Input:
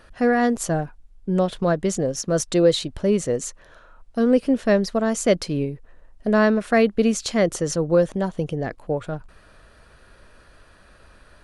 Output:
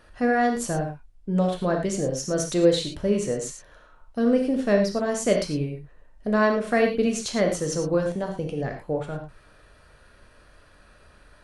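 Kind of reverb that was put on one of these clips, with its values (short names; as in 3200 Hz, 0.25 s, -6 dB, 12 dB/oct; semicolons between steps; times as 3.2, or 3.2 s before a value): non-linear reverb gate 0.13 s flat, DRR 2 dB; gain -4.5 dB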